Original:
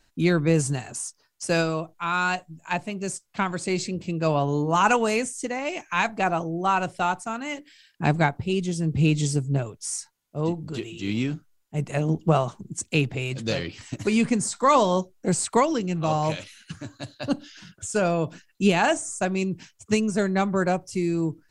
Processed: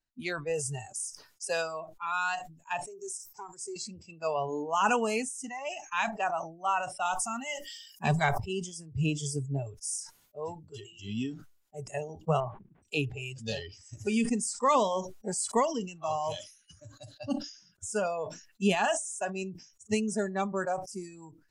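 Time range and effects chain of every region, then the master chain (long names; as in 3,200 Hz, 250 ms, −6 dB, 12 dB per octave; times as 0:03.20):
0:02.87–0:03.76: drawn EQ curve 130 Hz 0 dB, 260 Hz −15 dB, 380 Hz +8 dB, 570 Hz −10 dB, 850 Hz +1 dB, 1,300 Hz −4 dB, 3,500 Hz −11 dB, 5,600 Hz +8 dB, 11,000 Hz +6 dB + downward compressor 2 to 1, threshold −35 dBFS
0:07.05–0:08.40: high-shelf EQ 2,700 Hz +6 dB + comb filter 5.2 ms, depth 31% + level that may fall only so fast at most 41 dB per second
0:12.40–0:12.83: variable-slope delta modulation 32 kbit/s + Gaussian smoothing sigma 4.4 samples
whole clip: noise reduction from a noise print of the clip's start 19 dB; dynamic equaliser 9,500 Hz, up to +7 dB, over −55 dBFS, Q 6.9; level that may fall only so fast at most 110 dB per second; level −6 dB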